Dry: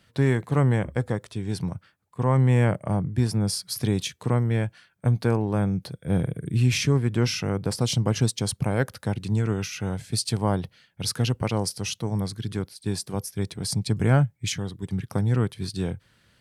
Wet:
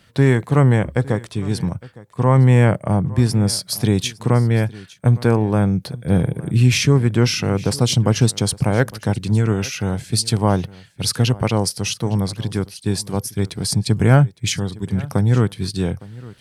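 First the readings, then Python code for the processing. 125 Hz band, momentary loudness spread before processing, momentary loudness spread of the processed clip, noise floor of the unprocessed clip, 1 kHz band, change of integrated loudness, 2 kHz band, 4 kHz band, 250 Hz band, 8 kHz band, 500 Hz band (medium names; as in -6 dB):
+7.0 dB, 9 LU, 9 LU, -65 dBFS, +7.0 dB, +7.0 dB, +7.0 dB, +7.0 dB, +7.0 dB, +7.0 dB, +7.0 dB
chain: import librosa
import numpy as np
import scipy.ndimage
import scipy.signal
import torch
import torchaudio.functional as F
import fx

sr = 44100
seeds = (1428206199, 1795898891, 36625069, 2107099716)

y = x + 10.0 ** (-20.5 / 20.0) * np.pad(x, (int(860 * sr / 1000.0), 0))[:len(x)]
y = y * librosa.db_to_amplitude(7.0)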